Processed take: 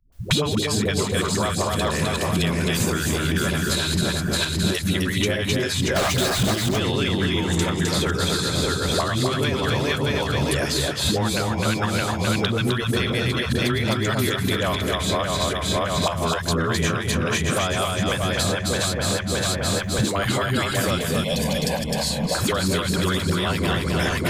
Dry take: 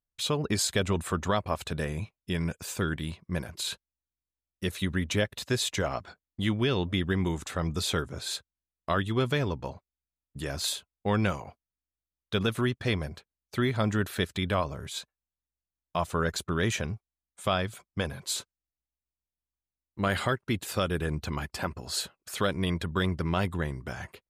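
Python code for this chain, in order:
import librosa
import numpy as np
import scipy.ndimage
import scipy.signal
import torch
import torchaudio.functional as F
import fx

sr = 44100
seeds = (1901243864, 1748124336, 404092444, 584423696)

p1 = fx.reverse_delay_fb(x, sr, ms=309, feedback_pct=50, wet_db=-4.5)
p2 = fx.recorder_agc(p1, sr, target_db=-14.5, rise_db_per_s=21.0, max_gain_db=30)
p3 = fx.hum_notches(p2, sr, base_hz=50, count=4)
p4 = fx.dispersion(p3, sr, late='highs', ms=124.0, hz=300.0)
p5 = fx.power_curve(p4, sr, exponent=0.35, at=(5.96, 6.54))
p6 = fx.fixed_phaser(p5, sr, hz=350.0, stages=6, at=(20.98, 22.35))
p7 = p6 + fx.echo_single(p6, sr, ms=258, db=-5.0, dry=0)
p8 = fx.band_squash(p7, sr, depth_pct=100)
y = p8 * librosa.db_to_amplitude(1.5)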